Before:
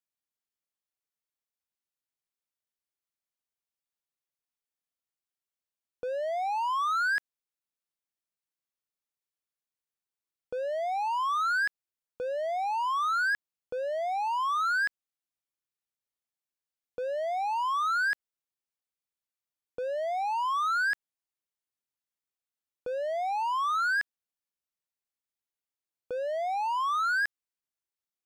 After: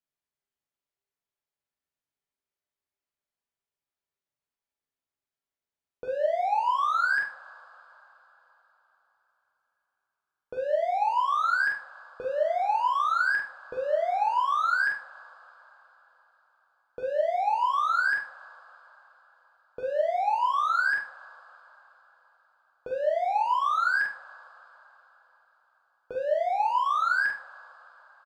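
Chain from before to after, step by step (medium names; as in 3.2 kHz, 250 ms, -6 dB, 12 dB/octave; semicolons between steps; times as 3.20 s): treble shelf 2.9 kHz -9.5 dB; doubling 45 ms -5 dB; on a send: reverberation, pre-delay 3 ms, DRR 1 dB; on the sum: trim +1 dB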